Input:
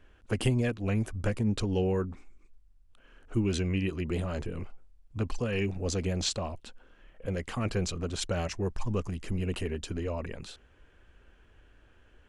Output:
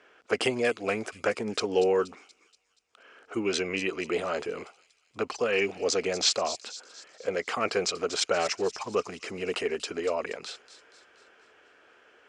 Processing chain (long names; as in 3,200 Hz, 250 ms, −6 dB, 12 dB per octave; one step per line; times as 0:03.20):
loudspeaker in its box 410–8,400 Hz, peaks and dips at 440 Hz +6 dB, 710 Hz +4 dB, 1,300 Hz +6 dB, 2,200 Hz +5 dB, 5,100 Hz +6 dB
delay with a high-pass on its return 238 ms, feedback 50%, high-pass 4,800 Hz, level −9 dB
level +5 dB